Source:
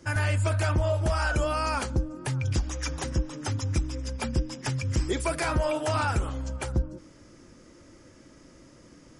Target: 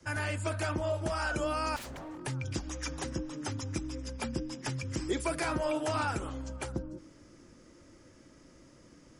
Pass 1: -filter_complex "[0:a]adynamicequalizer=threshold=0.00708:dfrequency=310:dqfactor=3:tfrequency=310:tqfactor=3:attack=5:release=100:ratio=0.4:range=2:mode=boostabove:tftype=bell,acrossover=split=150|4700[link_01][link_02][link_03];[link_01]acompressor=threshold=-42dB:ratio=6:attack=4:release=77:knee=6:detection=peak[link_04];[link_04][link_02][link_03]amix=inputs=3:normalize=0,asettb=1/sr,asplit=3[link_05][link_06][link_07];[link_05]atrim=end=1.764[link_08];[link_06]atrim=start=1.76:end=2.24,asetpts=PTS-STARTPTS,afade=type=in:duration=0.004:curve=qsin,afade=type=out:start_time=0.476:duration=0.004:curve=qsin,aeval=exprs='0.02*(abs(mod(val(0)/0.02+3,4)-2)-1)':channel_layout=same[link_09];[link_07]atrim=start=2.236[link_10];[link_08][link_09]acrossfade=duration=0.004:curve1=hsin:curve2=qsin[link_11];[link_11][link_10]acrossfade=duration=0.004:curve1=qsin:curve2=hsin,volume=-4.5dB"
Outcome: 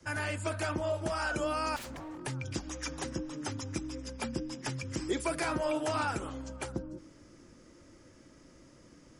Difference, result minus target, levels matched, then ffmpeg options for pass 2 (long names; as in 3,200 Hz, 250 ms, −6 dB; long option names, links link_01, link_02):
downward compressor: peak gain reduction +5.5 dB
-filter_complex "[0:a]adynamicequalizer=threshold=0.00708:dfrequency=310:dqfactor=3:tfrequency=310:tqfactor=3:attack=5:release=100:ratio=0.4:range=2:mode=boostabove:tftype=bell,acrossover=split=150|4700[link_01][link_02][link_03];[link_01]acompressor=threshold=-35.5dB:ratio=6:attack=4:release=77:knee=6:detection=peak[link_04];[link_04][link_02][link_03]amix=inputs=3:normalize=0,asettb=1/sr,asplit=3[link_05][link_06][link_07];[link_05]atrim=end=1.764[link_08];[link_06]atrim=start=1.76:end=2.24,asetpts=PTS-STARTPTS,afade=type=in:duration=0.004:curve=qsin,afade=type=out:start_time=0.476:duration=0.004:curve=qsin,aeval=exprs='0.02*(abs(mod(val(0)/0.02+3,4)-2)-1)':channel_layout=same[link_09];[link_07]atrim=start=2.236[link_10];[link_08][link_09]acrossfade=duration=0.004:curve1=hsin:curve2=qsin[link_11];[link_11][link_10]acrossfade=duration=0.004:curve1=qsin:curve2=hsin,volume=-4.5dB"